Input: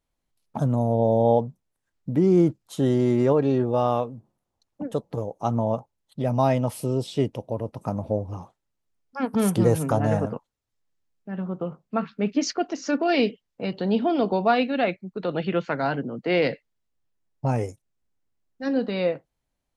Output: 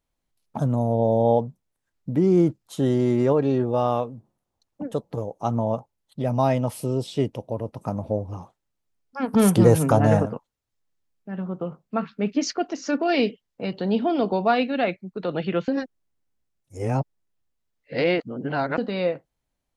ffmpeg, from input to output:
-filter_complex "[0:a]asettb=1/sr,asplit=3[s0][s1][s2];[s0]atrim=end=9.284[s3];[s1]atrim=start=9.28:end=10.23,asetpts=PTS-STARTPTS,afade=t=in:d=0.004:c=qsin,afade=t=out:st=0.946:d=0.004:c=qsin,acontrast=21[s4];[s2]atrim=start=10.226[s5];[s3][s4]acrossfade=d=0.004:c1=hsin:c2=qsin[s6];[s6][s5]acrossfade=d=0.004:c1=qsin:c2=hsin,asplit=3[s7][s8][s9];[s7]atrim=end=15.682[s10];[s8]atrim=start=15.678:end=18.782,asetpts=PTS-STARTPTS,areverse[s11];[s9]atrim=start=18.778[s12];[s10][s11]acrossfade=d=0.004:c1=hsin:c2=hsin[s13];[s13][s12]acrossfade=d=0.004:c1=hsin:c2=hsin"

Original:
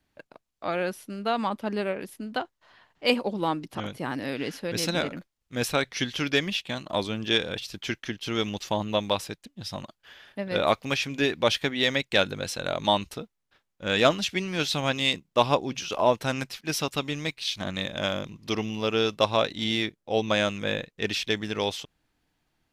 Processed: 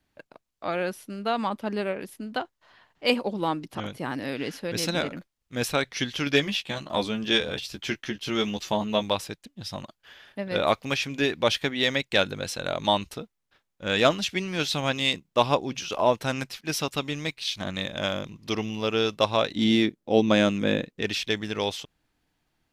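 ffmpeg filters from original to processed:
-filter_complex "[0:a]asettb=1/sr,asplit=3[s0][s1][s2];[s0]atrim=end=6.254[s3];[s1]atrim=start=6.25:end=9.03,asetpts=PTS-STARTPTS,afade=t=in:d=0.004:c=qsin,afade=t=out:st=2.776:d=0.004:c=qsin,asplit=2[s4][s5];[s5]adelay=14,volume=0.562[s6];[s4][s6]amix=inputs=2:normalize=0,atrim=end_sample=122598[s7];[s2]atrim=start=9.026[s8];[s3][s7]acrossfade=d=0.004:c1=hsin:c2=qsin[s9];[s9][s8]acrossfade=d=0.004:c1=qsin:c2=hsin,asettb=1/sr,asplit=3[s10][s11][s12];[s10]atrim=end=19.554[s13];[s11]atrim=start=19.55:end=21.02,asetpts=PTS-STARTPTS,afade=t=in:d=0.004:c=qsin,afade=t=out:st=1.466:d=0.004:c=qsin,equalizer=f=260:t=o:w=1.4:g=10.5[s14];[s12]atrim=start=21.016[s15];[s13][s14]acrossfade=d=0.004:c1=hsin:c2=qsin[s16];[s16][s15]acrossfade=d=0.004:c1=qsin:c2=hsin"

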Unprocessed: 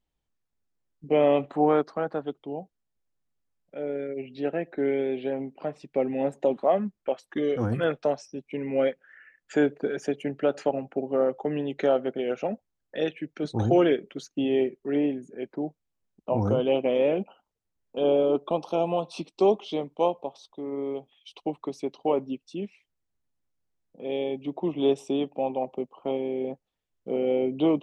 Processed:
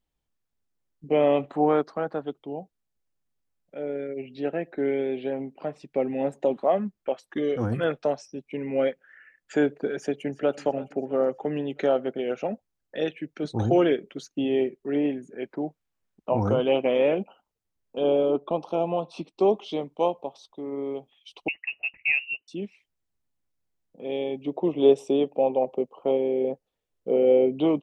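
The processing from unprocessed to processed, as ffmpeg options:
-filter_complex "[0:a]asplit=2[s0][s1];[s1]afade=t=in:st=9.99:d=0.01,afade=t=out:st=10.59:d=0.01,aecho=0:1:330|660|990|1320:0.133352|0.0666761|0.033338|0.016669[s2];[s0][s2]amix=inputs=2:normalize=0,asettb=1/sr,asplit=3[s3][s4][s5];[s3]atrim=end=15.054[s6];[s4]atrim=start=15.05:end=17.15,asetpts=PTS-STARTPTS,afade=t=in:d=0.004:c=qsin,afade=t=out:st=2.096:d=0.004:c=qsin,equalizer=f=1600:w=0.64:g=5.5[s7];[s5]atrim=start=17.146[s8];[s6][s7]acrossfade=d=0.004:c1=hsin:c2=qsin[s9];[s9][s8]acrossfade=d=0.004:c1=qsin:c2=hsin,asettb=1/sr,asplit=3[s10][s11][s12];[s10]atrim=end=18.304[s13];[s11]atrim=start=18.3:end=19.55,asetpts=PTS-STARTPTS,afade=t=in:d=0.004:c=qsin,afade=t=out:st=1.246:d=0.004:c=qsin,highshelf=f=4000:g=-10[s14];[s12]atrim=start=19.546[s15];[s13][s14]acrossfade=d=0.004:c1=hsin:c2=qsin[s16];[s16][s15]acrossfade=d=0.004:c1=qsin:c2=hsin,asettb=1/sr,asplit=3[s17][s18][s19];[s17]atrim=end=21.484[s20];[s18]atrim=start=21.48:end=22.48,asetpts=PTS-STARTPTS,afade=t=in:d=0.004:c=qsin,afade=t=out:st=0.996:d=0.004:c=qsin,lowpass=f=2600:t=q:w=0.5098,lowpass=f=2600:t=q:w=0.6013,lowpass=f=2600:t=q:w=0.9,lowpass=f=2600:t=q:w=2.563,afreqshift=-3000[s21];[s19]atrim=start=22.476[s22];[s20][s21]acrossfade=d=0.004:c1=hsin:c2=qsin[s23];[s23][s22]acrossfade=d=0.004:c1=qsin:c2=hsin,asettb=1/sr,asplit=3[s24][s25][s26];[s24]atrim=end=24.464[s27];[s25]atrim=start=24.46:end=27.52,asetpts=PTS-STARTPTS,afade=t=in:d=0.004:c=qsin,afade=t=out:st=3.056:d=0.004:c=qsin,equalizer=f=480:t=o:w=0.77:g=8[s28];[s26]atrim=start=27.516[s29];[s27][s28]acrossfade=d=0.004:c1=hsin:c2=qsin[s30];[s30][s29]acrossfade=d=0.004:c1=qsin:c2=hsin"

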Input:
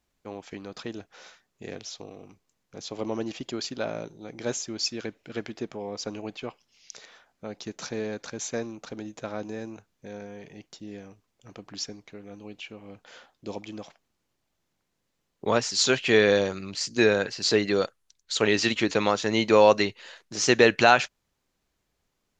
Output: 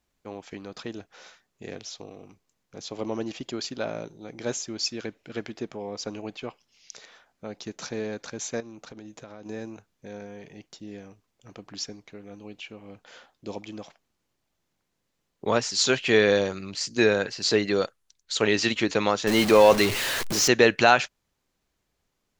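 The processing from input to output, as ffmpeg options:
-filter_complex "[0:a]asettb=1/sr,asplit=3[s0][s1][s2];[s0]atrim=end=8.604[s3];[s1]atrim=start=8.6:end=9.46,asetpts=PTS-STARTPTS,afade=t=in:d=0.004:c=qsin,afade=t=out:st=0.856:d=0.004:c=qsin,acompressor=threshold=0.0112:ratio=6:attack=3.2:release=140:knee=1:detection=peak[s4];[s2]atrim=start=9.456[s5];[s3][s4]acrossfade=d=0.004:c1=hsin:c2=qsin[s6];[s6][s5]acrossfade=d=0.004:c1=qsin:c2=hsin,asettb=1/sr,asplit=3[s7][s8][s9];[s7]atrim=end=19.274[s10];[s8]atrim=start=19.27:end=20.48,asetpts=PTS-STARTPTS,afade=t=in:d=0.004:c=qsin,afade=t=out:st=1.206:d=0.004:c=qsin,aeval=exprs='val(0)+0.5*0.075*sgn(val(0))':c=same[s11];[s9]atrim=start=20.476[s12];[s10][s11]acrossfade=d=0.004:c1=hsin:c2=qsin[s13];[s13][s12]acrossfade=d=0.004:c1=qsin:c2=hsin"

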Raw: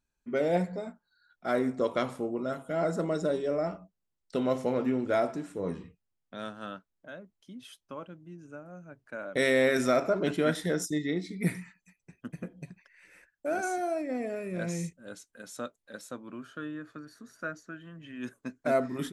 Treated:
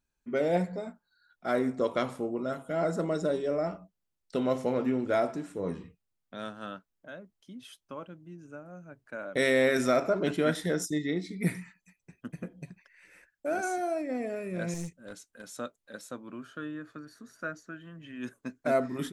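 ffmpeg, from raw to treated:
-filter_complex "[0:a]asettb=1/sr,asplit=3[s0][s1][s2];[s0]atrim=end=14.744[s3];[s1]atrim=start=14.74:end=15.5,asetpts=PTS-STARTPTS,afade=t=in:d=0.004:c=qsin,afade=t=out:st=0.756:d=0.004:c=qsin,aeval=exprs='clip(val(0),-1,0.0106)':c=same[s4];[s2]atrim=start=15.496[s5];[s3][s4]acrossfade=d=0.004:c1=hsin:c2=qsin[s6];[s6][s5]acrossfade=d=0.004:c1=qsin:c2=hsin"

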